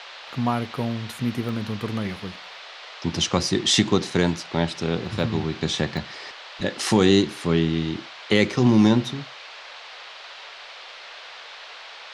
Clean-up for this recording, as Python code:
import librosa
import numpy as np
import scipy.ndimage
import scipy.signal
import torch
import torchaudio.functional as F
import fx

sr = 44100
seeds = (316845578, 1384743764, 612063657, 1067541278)

y = fx.fix_interpolate(x, sr, at_s=(1.49, 5.97), length_ms=1.2)
y = fx.noise_reduce(y, sr, print_start_s=10.54, print_end_s=11.04, reduce_db=25.0)